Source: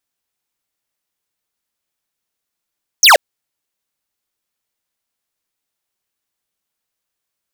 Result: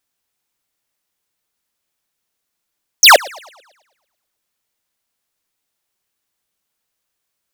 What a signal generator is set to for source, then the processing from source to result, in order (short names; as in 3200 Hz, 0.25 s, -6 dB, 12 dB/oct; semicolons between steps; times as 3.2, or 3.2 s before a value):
laser zap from 6900 Hz, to 500 Hz, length 0.13 s square, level -6 dB
in parallel at -6 dB: hard clip -14 dBFS; on the sum: warbling echo 0.11 s, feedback 49%, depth 180 cents, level -23 dB